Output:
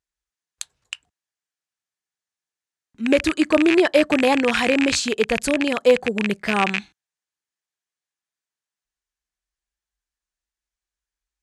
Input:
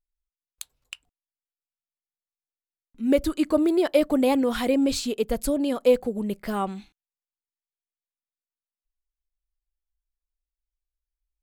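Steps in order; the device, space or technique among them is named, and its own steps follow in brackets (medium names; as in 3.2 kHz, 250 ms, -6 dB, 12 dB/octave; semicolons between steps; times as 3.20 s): car door speaker with a rattle (rattle on loud lows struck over -39 dBFS, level -16 dBFS; cabinet simulation 81–9400 Hz, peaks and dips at 260 Hz -6 dB, 540 Hz -4 dB, 1.7 kHz +6 dB, 6.4 kHz +3 dB); trim +6.5 dB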